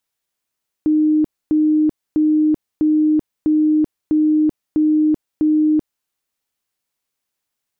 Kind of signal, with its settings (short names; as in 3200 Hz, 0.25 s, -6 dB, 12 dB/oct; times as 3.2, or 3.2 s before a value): tone bursts 307 Hz, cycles 118, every 0.65 s, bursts 8, -11.5 dBFS